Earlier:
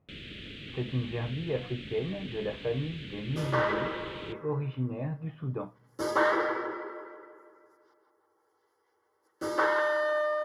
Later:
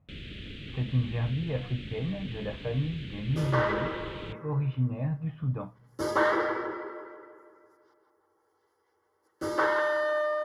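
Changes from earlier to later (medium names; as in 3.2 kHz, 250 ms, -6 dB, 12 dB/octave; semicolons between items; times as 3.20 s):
speech: add peaking EQ 380 Hz -15 dB 0.36 oct; first sound: send off; master: add bass shelf 140 Hz +10 dB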